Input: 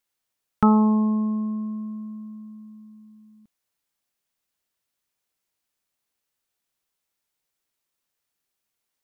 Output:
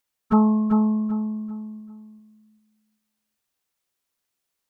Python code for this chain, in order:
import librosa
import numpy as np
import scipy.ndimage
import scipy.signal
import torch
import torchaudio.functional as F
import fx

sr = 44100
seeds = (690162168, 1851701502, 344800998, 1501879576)

y = fx.stretch_vocoder_free(x, sr, factor=0.52)
y = fx.echo_feedback(y, sr, ms=391, feedback_pct=30, wet_db=-6.0)
y = y * 10.0 ** (3.5 / 20.0)